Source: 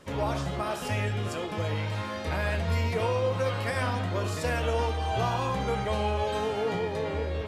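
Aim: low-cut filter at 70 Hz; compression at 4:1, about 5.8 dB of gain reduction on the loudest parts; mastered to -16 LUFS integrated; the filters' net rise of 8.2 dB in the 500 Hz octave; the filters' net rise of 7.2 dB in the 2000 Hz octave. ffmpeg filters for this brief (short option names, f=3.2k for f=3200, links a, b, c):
-af "highpass=70,equalizer=f=500:t=o:g=9,equalizer=f=2k:t=o:g=8.5,acompressor=threshold=-23dB:ratio=4,volume=11dB"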